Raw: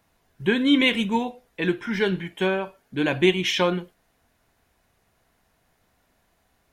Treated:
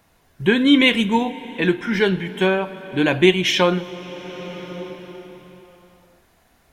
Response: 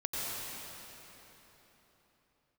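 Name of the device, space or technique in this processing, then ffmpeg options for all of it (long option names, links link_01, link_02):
ducked reverb: -filter_complex "[0:a]asplit=3[link_01][link_02][link_03];[1:a]atrim=start_sample=2205[link_04];[link_02][link_04]afir=irnorm=-1:irlink=0[link_05];[link_03]apad=whole_len=296374[link_06];[link_05][link_06]sidechaincompress=threshold=-34dB:ratio=10:attack=16:release=797,volume=-7dB[link_07];[link_01][link_07]amix=inputs=2:normalize=0,volume=4.5dB"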